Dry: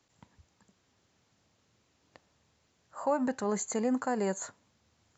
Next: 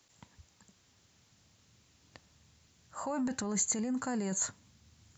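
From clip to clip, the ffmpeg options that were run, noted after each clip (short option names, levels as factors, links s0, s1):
-af "asubboost=boost=4:cutoff=250,alimiter=level_in=1.58:limit=0.0631:level=0:latency=1:release=14,volume=0.631,highshelf=f=2400:g=9"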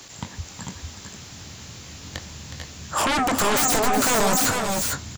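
-filter_complex "[0:a]asplit=2[s0][s1];[s1]adelay=22,volume=0.282[s2];[s0][s2]amix=inputs=2:normalize=0,aeval=exprs='0.119*sin(PI/2*10*val(0)/0.119)':c=same,aecho=1:1:366|442|456:0.299|0.422|0.473"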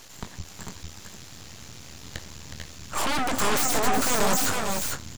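-af "aeval=exprs='max(val(0),0)':c=same"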